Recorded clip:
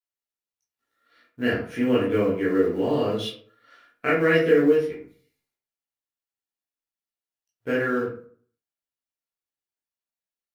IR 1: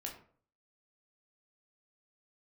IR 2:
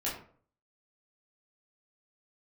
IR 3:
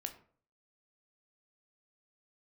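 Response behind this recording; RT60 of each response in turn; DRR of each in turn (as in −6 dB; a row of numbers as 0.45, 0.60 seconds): 2; 0.50, 0.50, 0.50 seconds; −0.5, −7.5, 6.0 decibels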